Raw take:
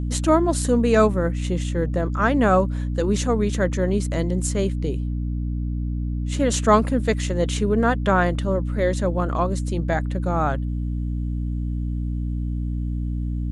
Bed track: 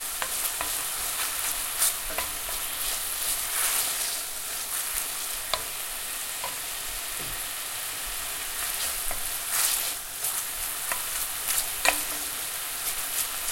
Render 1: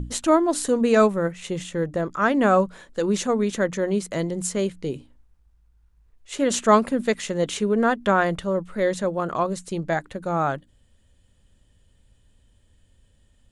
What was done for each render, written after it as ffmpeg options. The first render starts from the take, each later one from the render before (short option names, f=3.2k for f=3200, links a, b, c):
-af "bandreject=f=60:t=h:w=6,bandreject=f=120:t=h:w=6,bandreject=f=180:t=h:w=6,bandreject=f=240:t=h:w=6,bandreject=f=300:t=h:w=6"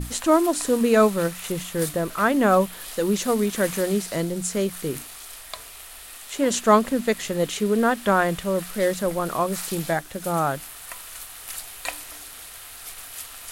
-filter_complex "[1:a]volume=-8.5dB[a];[0:a][a]amix=inputs=2:normalize=0"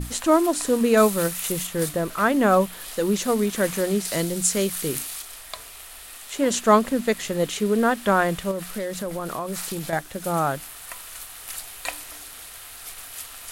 -filter_complex "[0:a]asettb=1/sr,asplit=3[a][b][c];[a]atrim=end=0.974[d];[b]atrim=start=0.97:end=1.67,asetpts=PTS-STARTPTS,afade=t=in:d=0.004:c=qsin,afade=t=out:st=0.696:d=0.004:c=qsin,aemphasis=mode=production:type=cd[e];[c]atrim=start=1.666[f];[d][e]acrossfade=d=0.004:c1=hsin:c2=qsin[g];[g][f]acrossfade=d=0.004:c1=qsin:c2=hsin,asettb=1/sr,asplit=3[h][i][j];[h]atrim=end=4.054[k];[i]atrim=start=4.05:end=5.22,asetpts=PTS-STARTPTS,afade=t=in:d=0.004:c=qsin,afade=t=out:st=1.166:d=0.004:c=qsin,highshelf=f=2.4k:g=8[l];[j]atrim=start=5.216[m];[k][l]acrossfade=d=0.004:c1=hsin:c2=qsin[n];[n][m]acrossfade=d=0.004:c1=qsin:c2=hsin,asettb=1/sr,asplit=3[o][p][q];[o]atrim=end=8.514[r];[p]atrim=start=8.51:end=9.93,asetpts=PTS-STARTPTS,afade=t=in:d=0.004:c=qsin,afade=t=out:st=1.416:d=0.004:c=qsin,acompressor=threshold=-25dB:ratio=6:attack=3.2:release=140:knee=1:detection=peak[s];[q]atrim=start=9.926[t];[r][s]acrossfade=d=0.004:c1=hsin:c2=qsin[u];[u][t]acrossfade=d=0.004:c1=qsin:c2=hsin"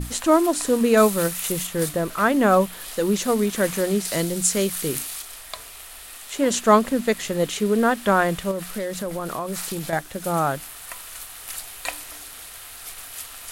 -af "volume=1dB"